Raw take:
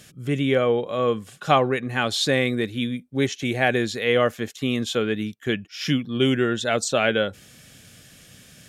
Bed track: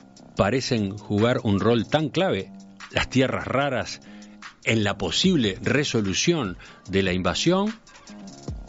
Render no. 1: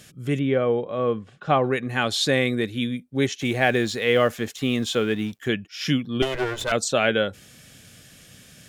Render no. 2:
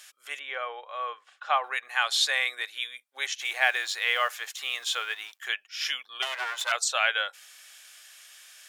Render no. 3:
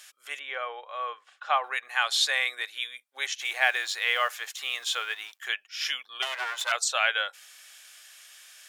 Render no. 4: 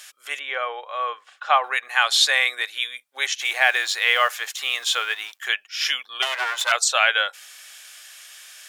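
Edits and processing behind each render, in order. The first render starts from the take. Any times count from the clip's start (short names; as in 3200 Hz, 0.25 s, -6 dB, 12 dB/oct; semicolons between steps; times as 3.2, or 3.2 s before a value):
0.39–1.64 tape spacing loss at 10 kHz 26 dB; 3.41–5.48 G.711 law mismatch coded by mu; 6.22–6.72 minimum comb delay 2 ms
inverse Chebyshev high-pass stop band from 190 Hz, stop band 70 dB
nothing audible
gain +7 dB; limiter -3 dBFS, peak gain reduction 2.5 dB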